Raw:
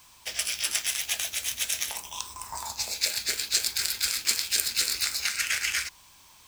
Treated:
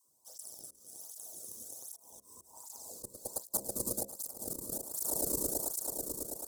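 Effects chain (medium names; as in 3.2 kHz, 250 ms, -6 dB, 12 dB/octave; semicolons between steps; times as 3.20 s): level held to a coarse grid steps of 24 dB; phase dispersion lows, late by 78 ms, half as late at 350 Hz; Chebyshev shaper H 4 -21 dB, 8 -7 dB, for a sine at -6 dBFS; on a send: echo with a slow build-up 109 ms, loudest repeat 5, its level -15.5 dB; on the sum: dynamic bell 4.4 kHz, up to -3 dB, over -47 dBFS, Q 0.83; Chebyshev band-stop 560–8300 Hz, order 2; slow attack 301 ms; de-hum 67.58 Hz, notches 10; cancelling through-zero flanger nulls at 1.3 Hz, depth 1.5 ms; trim +7.5 dB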